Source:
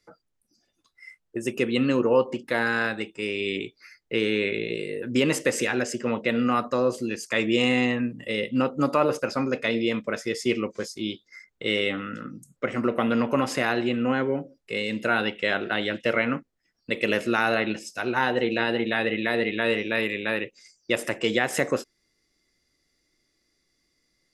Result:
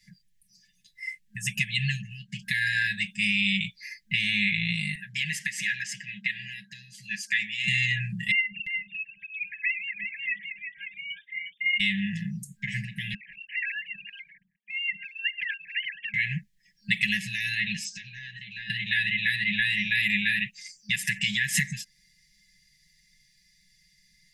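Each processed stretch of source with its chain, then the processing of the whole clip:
4.95–7.68 HPF 320 Hz + high shelf 2900 Hz -11.5 dB
8.31–11.8 sine-wave speech + echo 0.355 s -8 dB
13.14–16.14 sine-wave speech + compressor 2.5:1, threshold -33 dBFS
17.84–18.7 steep low-pass 7800 Hz 72 dB/oct + compressor 5:1, threshold -40 dBFS
whole clip: comb 5.8 ms, depth 87%; compressor, threshold -24 dBFS; FFT band-reject 210–1600 Hz; gain +6.5 dB

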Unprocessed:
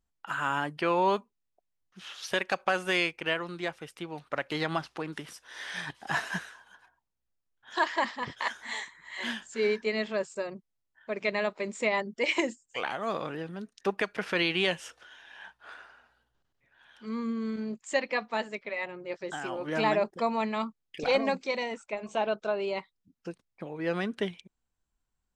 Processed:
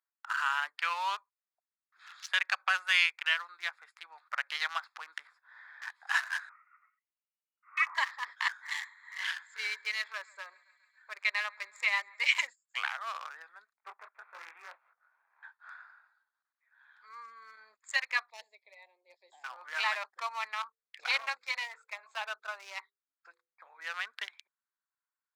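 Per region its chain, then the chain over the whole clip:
5.27–5.82 LPF 1100 Hz 6 dB/oct + compressor 5:1, threshold -45 dBFS
6.49–7.95 bell 1200 Hz -10 dB 0.78 oct + inverted band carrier 2900 Hz
8.54–12.48 notch 670 Hz + thinning echo 0.138 s, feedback 81%, high-pass 880 Hz, level -19 dB
13.73–15.43 median filter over 25 samples + LPF 2700 Hz 24 dB/oct + detuned doubles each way 56 cents
18.3–19.44 Butterworth band-stop 1400 Hz, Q 0.56 + air absorption 73 m
20.49–23.81 notches 50/100/150/200/250/300/350/400/450/500 Hz + Doppler distortion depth 0.1 ms
whole clip: Wiener smoothing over 15 samples; HPF 1200 Hz 24 dB/oct; gain +3.5 dB

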